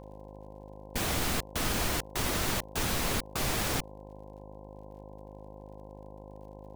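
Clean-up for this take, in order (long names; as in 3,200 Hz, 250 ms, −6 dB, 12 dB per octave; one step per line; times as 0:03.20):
click removal
hum removal 51.6 Hz, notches 20
notch filter 530 Hz, Q 30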